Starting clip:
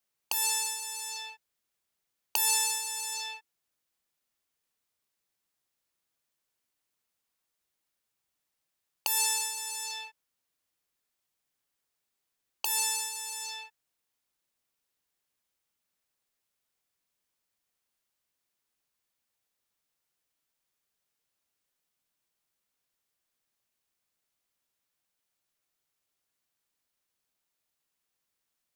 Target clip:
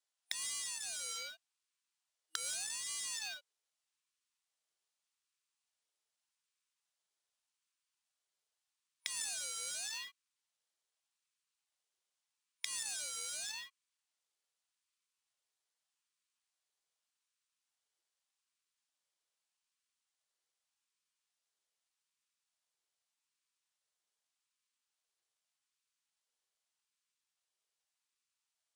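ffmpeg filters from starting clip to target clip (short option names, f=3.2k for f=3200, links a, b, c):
-af "acompressor=threshold=-31dB:ratio=8,afftfilt=real='re*between(b*sr/4096,1600,9800)':imag='im*between(b*sr/4096,1600,9800)':win_size=4096:overlap=0.75,acrusher=bits=3:mode=log:mix=0:aa=0.000001,aeval=exprs='val(0)*sin(2*PI*950*n/s+950*0.35/0.83*sin(2*PI*0.83*n/s))':c=same"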